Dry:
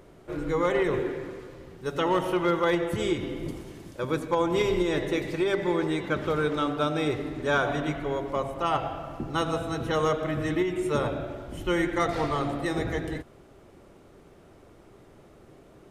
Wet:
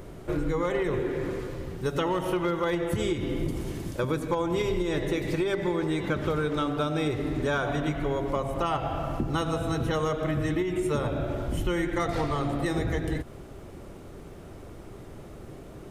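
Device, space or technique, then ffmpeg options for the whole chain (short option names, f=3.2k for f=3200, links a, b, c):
ASMR close-microphone chain: -af "lowshelf=f=170:g=8,acompressor=threshold=-31dB:ratio=5,highshelf=f=8.2k:g=5.5,volume=6dB"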